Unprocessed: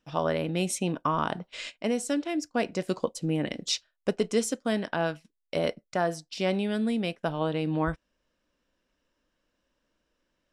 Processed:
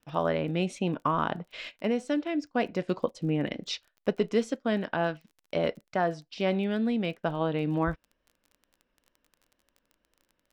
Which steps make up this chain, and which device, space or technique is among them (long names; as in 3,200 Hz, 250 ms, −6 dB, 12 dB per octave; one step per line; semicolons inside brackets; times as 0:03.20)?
lo-fi chain (low-pass filter 3,400 Hz 12 dB per octave; tape wow and flutter; surface crackle 22 per second −44 dBFS)